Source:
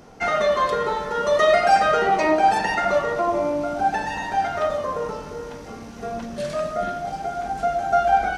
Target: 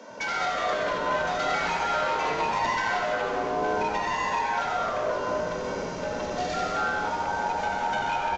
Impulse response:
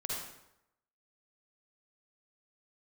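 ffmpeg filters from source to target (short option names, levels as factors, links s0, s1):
-filter_complex "[0:a]highpass=63,aecho=1:1:2.3:0.89,acompressor=threshold=0.0398:ratio=4,aeval=exprs='0.0562*(abs(mod(val(0)/0.0562+3,4)-2)-1)':c=same,afreqshift=140,asplit=9[s0][s1][s2][s3][s4][s5][s6][s7][s8];[s1]adelay=92,afreqshift=-110,volume=0.501[s9];[s2]adelay=184,afreqshift=-220,volume=0.305[s10];[s3]adelay=276,afreqshift=-330,volume=0.186[s11];[s4]adelay=368,afreqshift=-440,volume=0.114[s12];[s5]adelay=460,afreqshift=-550,volume=0.0692[s13];[s6]adelay=552,afreqshift=-660,volume=0.0422[s14];[s7]adelay=644,afreqshift=-770,volume=0.0257[s15];[s8]adelay=736,afreqshift=-880,volume=0.0157[s16];[s0][s9][s10][s11][s12][s13][s14][s15][s16]amix=inputs=9:normalize=0,asplit=2[s17][s18];[1:a]atrim=start_sample=2205,adelay=75[s19];[s18][s19]afir=irnorm=-1:irlink=0,volume=0.596[s20];[s17][s20]amix=inputs=2:normalize=0,aresample=16000,aresample=44100"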